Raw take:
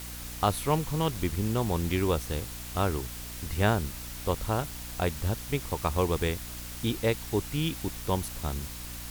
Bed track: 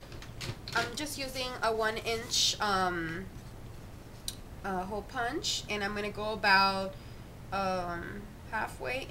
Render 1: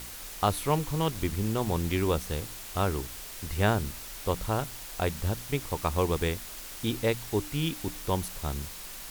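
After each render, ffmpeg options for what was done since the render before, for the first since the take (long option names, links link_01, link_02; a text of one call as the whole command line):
ffmpeg -i in.wav -af "bandreject=frequency=60:width_type=h:width=4,bandreject=frequency=120:width_type=h:width=4,bandreject=frequency=180:width_type=h:width=4,bandreject=frequency=240:width_type=h:width=4,bandreject=frequency=300:width_type=h:width=4" out.wav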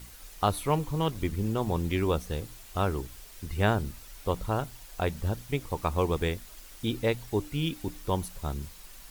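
ffmpeg -i in.wav -af "afftdn=noise_reduction=9:noise_floor=-42" out.wav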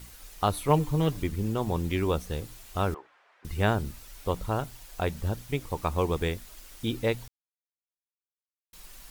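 ffmpeg -i in.wav -filter_complex "[0:a]asettb=1/sr,asplit=3[link_01][link_02][link_03];[link_01]atrim=end=0.684[link_04];[link_02]atrim=start=0.68:end=1.22,asetpts=PTS-STARTPTS,afade=type=in:duration=0.004:curve=qsin,afade=type=out:start_time=0.536:duration=0.004:curve=qsin,aecho=1:1:6.7:0.68,atrim=end_sample=23814[link_05];[link_03]atrim=start=1.216[link_06];[link_04][link_05]acrossfade=duration=0.004:curve1=hsin:curve2=qsin[link_07];[link_07][link_06]acrossfade=duration=0.004:curve1=qsin:curve2=hsin,asettb=1/sr,asplit=3[link_08][link_09][link_10];[link_08]atrim=end=2.944[link_11];[link_09]atrim=start=2.94:end=3.45,asetpts=PTS-STARTPTS,afade=type=in:duration=0.004:curve=qsin,afade=type=out:start_time=0.506:duration=0.004:curve=qsin,asuperpass=centerf=1100:order=4:qfactor=0.83[link_12];[link_10]atrim=start=3.446[link_13];[link_11][link_12]acrossfade=duration=0.004:curve1=hsin:curve2=qsin[link_14];[link_14][link_13]acrossfade=duration=0.004:curve1=qsin:curve2=hsin,asplit=3[link_15][link_16][link_17];[link_15]atrim=end=7.28,asetpts=PTS-STARTPTS,afade=type=out:start_time=7.276:duration=0.004:curve=hsin[link_18];[link_16]atrim=start=7.28:end=8.73,asetpts=PTS-STARTPTS,volume=0[link_19];[link_17]atrim=start=8.73,asetpts=PTS-STARTPTS,afade=type=in:duration=0.004:curve=hsin[link_20];[link_18][link_19][link_20]concat=n=3:v=0:a=1" out.wav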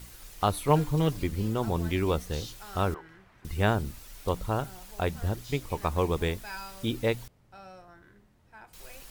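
ffmpeg -i in.wav -i bed.wav -filter_complex "[1:a]volume=-16.5dB[link_01];[0:a][link_01]amix=inputs=2:normalize=0" out.wav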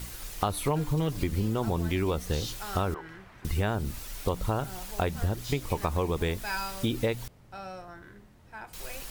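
ffmpeg -i in.wav -filter_complex "[0:a]asplit=2[link_01][link_02];[link_02]alimiter=limit=-18.5dB:level=0:latency=1:release=26,volume=2dB[link_03];[link_01][link_03]amix=inputs=2:normalize=0,acompressor=threshold=-24dB:ratio=6" out.wav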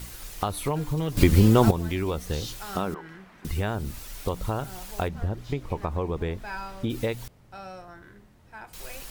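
ffmpeg -i in.wav -filter_complex "[0:a]asettb=1/sr,asplit=3[link_01][link_02][link_03];[link_01]atrim=end=2.694[link_04];[link_02]atrim=start=2.69:end=3.48,asetpts=PTS-STARTPTS,afade=type=in:duration=0.004:curve=qsin,afade=type=out:start_time=0.786:duration=0.004:curve=qsin,lowshelf=frequency=140:width_type=q:width=3:gain=-6[link_05];[link_03]atrim=start=3.476[link_06];[link_04][link_05]acrossfade=duration=0.004:curve1=hsin:curve2=qsin[link_07];[link_07][link_06]acrossfade=duration=0.004:curve1=qsin:curve2=hsin,asplit=3[link_08][link_09][link_10];[link_08]afade=type=out:start_time=5.07:duration=0.02[link_11];[link_09]lowpass=frequency=1500:poles=1,afade=type=in:start_time=5.07:duration=0.02,afade=type=out:start_time=6.89:duration=0.02[link_12];[link_10]afade=type=in:start_time=6.89:duration=0.02[link_13];[link_11][link_12][link_13]amix=inputs=3:normalize=0,asplit=3[link_14][link_15][link_16];[link_14]atrim=end=1.172[link_17];[link_15]atrim=start=1.168:end=1.712,asetpts=PTS-STARTPTS,volume=11.5dB[link_18];[link_16]atrim=start=1.708[link_19];[link_17][link_18]acrossfade=duration=0.004:curve1=hsin:curve2=hsin[link_20];[link_20][link_19]acrossfade=duration=0.004:curve1=hsin:curve2=hsin" out.wav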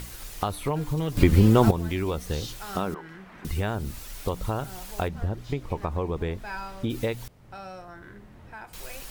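ffmpeg -i in.wav -filter_complex "[0:a]acrossover=split=3200[link_01][link_02];[link_01]acompressor=mode=upward:threshold=-38dB:ratio=2.5[link_03];[link_02]alimiter=level_in=6.5dB:limit=-24dB:level=0:latency=1:release=331,volume=-6.5dB[link_04];[link_03][link_04]amix=inputs=2:normalize=0" out.wav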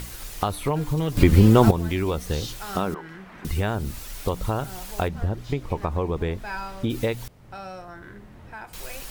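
ffmpeg -i in.wav -af "volume=3dB,alimiter=limit=-2dB:level=0:latency=1" out.wav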